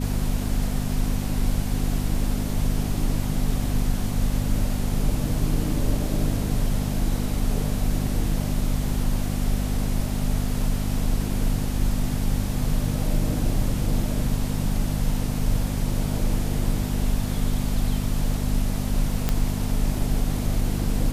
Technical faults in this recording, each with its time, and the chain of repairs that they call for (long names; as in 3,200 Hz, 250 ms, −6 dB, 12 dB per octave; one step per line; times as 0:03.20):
mains hum 50 Hz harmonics 5 −27 dBFS
0:19.29: click −8 dBFS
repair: click removal
hum removal 50 Hz, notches 5